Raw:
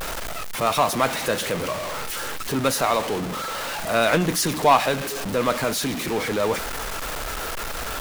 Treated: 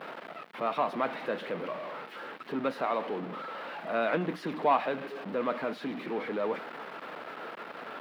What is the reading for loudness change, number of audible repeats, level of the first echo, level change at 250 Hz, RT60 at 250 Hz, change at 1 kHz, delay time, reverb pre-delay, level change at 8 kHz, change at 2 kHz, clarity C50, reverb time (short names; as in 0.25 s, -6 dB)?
-10.0 dB, none, none, -8.5 dB, none, -9.0 dB, none, none, under -35 dB, -11.0 dB, none, none